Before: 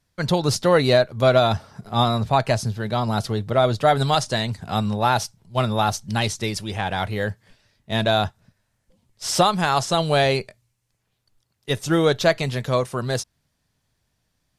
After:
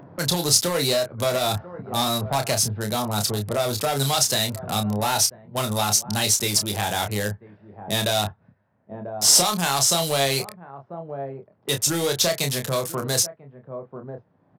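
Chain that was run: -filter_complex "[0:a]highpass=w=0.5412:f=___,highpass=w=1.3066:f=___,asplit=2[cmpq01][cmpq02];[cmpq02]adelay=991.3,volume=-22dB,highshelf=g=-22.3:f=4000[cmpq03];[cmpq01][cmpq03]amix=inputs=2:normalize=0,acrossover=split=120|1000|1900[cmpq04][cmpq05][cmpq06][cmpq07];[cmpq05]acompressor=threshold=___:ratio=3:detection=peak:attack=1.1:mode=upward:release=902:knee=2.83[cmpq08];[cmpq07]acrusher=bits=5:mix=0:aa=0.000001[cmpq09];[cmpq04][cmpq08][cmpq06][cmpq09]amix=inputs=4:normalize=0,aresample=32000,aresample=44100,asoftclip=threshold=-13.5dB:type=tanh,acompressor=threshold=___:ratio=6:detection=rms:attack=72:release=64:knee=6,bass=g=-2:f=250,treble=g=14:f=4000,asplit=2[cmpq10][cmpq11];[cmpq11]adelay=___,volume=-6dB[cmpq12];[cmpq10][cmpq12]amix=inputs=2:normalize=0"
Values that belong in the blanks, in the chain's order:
74, 74, -21dB, -24dB, 29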